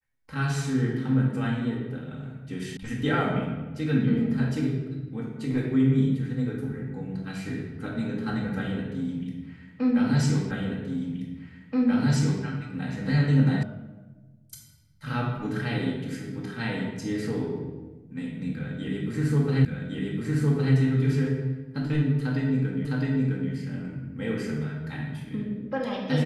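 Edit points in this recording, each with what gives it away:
2.77 sound cut off
10.51 repeat of the last 1.93 s
13.63 sound cut off
19.65 repeat of the last 1.11 s
22.85 repeat of the last 0.66 s

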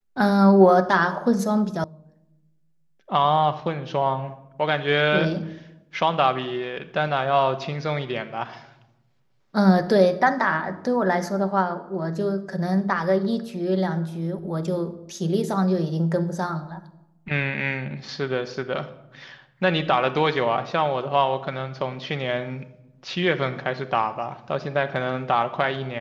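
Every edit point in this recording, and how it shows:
1.84 sound cut off

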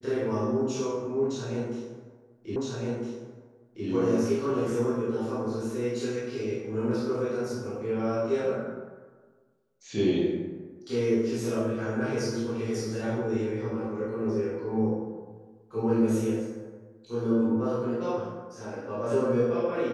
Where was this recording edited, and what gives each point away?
2.56 repeat of the last 1.31 s

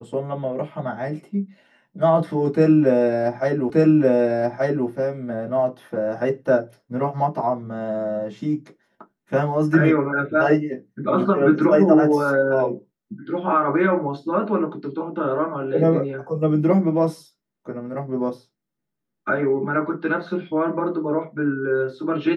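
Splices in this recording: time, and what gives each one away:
3.7 repeat of the last 1.18 s

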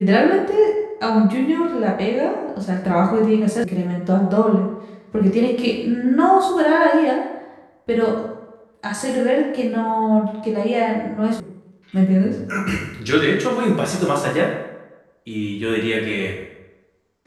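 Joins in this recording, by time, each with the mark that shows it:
3.64 sound cut off
11.4 sound cut off

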